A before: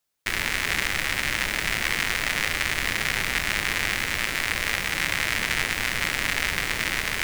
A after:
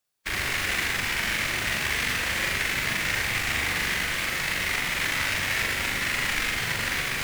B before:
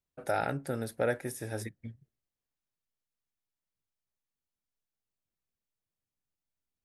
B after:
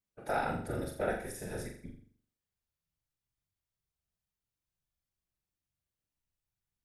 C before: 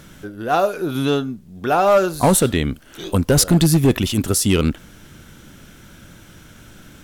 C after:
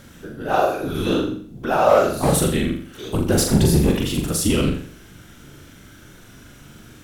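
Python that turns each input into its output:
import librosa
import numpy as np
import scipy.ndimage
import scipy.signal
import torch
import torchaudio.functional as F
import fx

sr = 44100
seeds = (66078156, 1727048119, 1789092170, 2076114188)

y = fx.whisperise(x, sr, seeds[0])
y = fx.hpss(y, sr, part='percussive', gain_db=-6)
y = fx.room_flutter(y, sr, wall_m=7.2, rt60_s=0.51)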